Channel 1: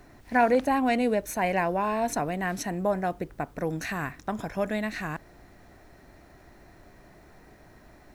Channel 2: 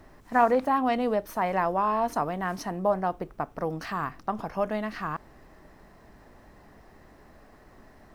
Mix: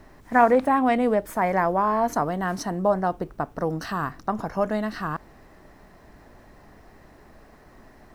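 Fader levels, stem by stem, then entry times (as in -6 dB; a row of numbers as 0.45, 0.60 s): -6.5, +2.0 dB; 0.00, 0.00 s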